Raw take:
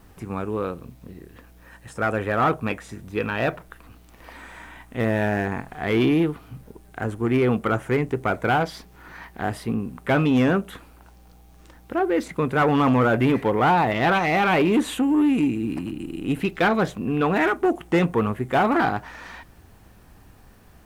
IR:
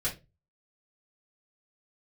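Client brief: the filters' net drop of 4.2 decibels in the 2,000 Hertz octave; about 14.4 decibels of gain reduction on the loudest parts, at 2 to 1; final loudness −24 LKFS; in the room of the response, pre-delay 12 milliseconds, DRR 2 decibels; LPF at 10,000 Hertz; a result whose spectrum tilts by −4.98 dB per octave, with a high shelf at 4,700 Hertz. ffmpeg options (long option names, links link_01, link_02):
-filter_complex "[0:a]lowpass=10000,equalizer=frequency=2000:width_type=o:gain=-4.5,highshelf=frequency=4700:gain=-8.5,acompressor=threshold=-44dB:ratio=2,asplit=2[link_01][link_02];[1:a]atrim=start_sample=2205,adelay=12[link_03];[link_02][link_03]afir=irnorm=-1:irlink=0,volume=-7.5dB[link_04];[link_01][link_04]amix=inputs=2:normalize=0,volume=11dB"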